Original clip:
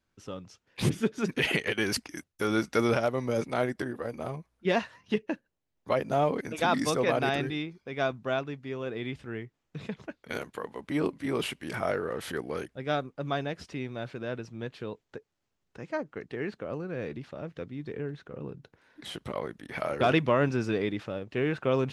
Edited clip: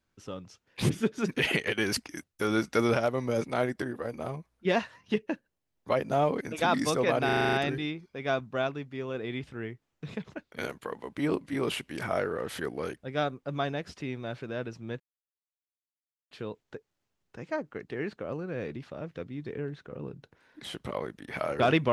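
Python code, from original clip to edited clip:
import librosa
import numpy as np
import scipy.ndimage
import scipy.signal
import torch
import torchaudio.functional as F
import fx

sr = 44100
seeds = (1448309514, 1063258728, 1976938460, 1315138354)

y = fx.edit(x, sr, fx.stutter(start_s=7.25, slice_s=0.04, count=8),
    fx.insert_silence(at_s=14.72, length_s=1.31), tone=tone)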